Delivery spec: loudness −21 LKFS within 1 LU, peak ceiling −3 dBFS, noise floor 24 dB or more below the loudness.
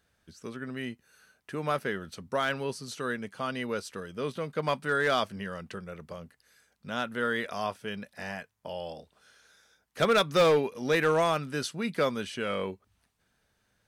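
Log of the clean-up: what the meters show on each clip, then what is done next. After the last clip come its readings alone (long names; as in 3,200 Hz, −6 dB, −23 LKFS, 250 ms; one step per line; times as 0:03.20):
share of clipped samples 0.4%; peaks flattened at −17.5 dBFS; integrated loudness −30.5 LKFS; sample peak −17.5 dBFS; target loudness −21.0 LKFS
→ clipped peaks rebuilt −17.5 dBFS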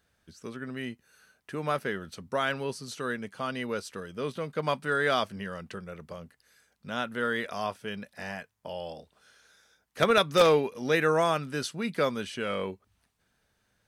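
share of clipped samples 0.0%; integrated loudness −29.5 LKFS; sample peak −8.5 dBFS; target loudness −21.0 LKFS
→ level +8.5 dB
brickwall limiter −3 dBFS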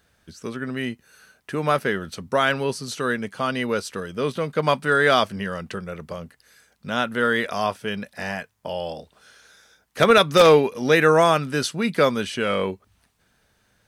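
integrated loudness −21.5 LKFS; sample peak −3.0 dBFS; background noise floor −66 dBFS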